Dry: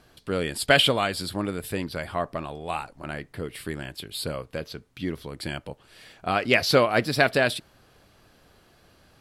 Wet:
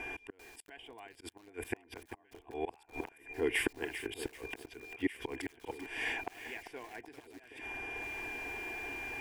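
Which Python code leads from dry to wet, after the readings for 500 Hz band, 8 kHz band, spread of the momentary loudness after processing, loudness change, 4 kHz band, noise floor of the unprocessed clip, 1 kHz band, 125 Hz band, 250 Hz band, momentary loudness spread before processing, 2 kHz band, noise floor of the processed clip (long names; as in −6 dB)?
−15.0 dB, −13.0 dB, 15 LU, −14.0 dB, −20.0 dB, −59 dBFS, −17.5 dB, −21.5 dB, −11.5 dB, 16 LU, −11.5 dB, −65 dBFS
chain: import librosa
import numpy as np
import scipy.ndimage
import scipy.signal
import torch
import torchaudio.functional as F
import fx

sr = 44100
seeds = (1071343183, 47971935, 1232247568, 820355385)

y = fx.bass_treble(x, sr, bass_db=-10, treble_db=-4)
y = y + 10.0 ** (-57.0 / 20.0) * np.sin(2.0 * np.pi * 2400.0 * np.arange(len(y)) / sr)
y = fx.gate_flip(y, sr, shuts_db=-21.0, range_db=-39)
y = fx.auto_swell(y, sr, attack_ms=361.0)
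y = fx.air_absorb(y, sr, metres=55.0)
y = fx.fixed_phaser(y, sr, hz=850.0, stages=8)
y = fx.echo_alternate(y, sr, ms=770, hz=940.0, feedback_pct=68, wet_db=-14.0)
y = fx.echo_crushed(y, sr, ms=393, feedback_pct=35, bits=11, wet_db=-9.5)
y = y * 10.0 ** (17.5 / 20.0)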